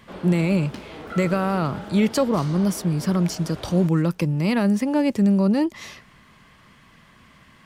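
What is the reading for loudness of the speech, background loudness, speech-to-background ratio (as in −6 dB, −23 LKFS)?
−22.0 LKFS, −38.5 LKFS, 16.5 dB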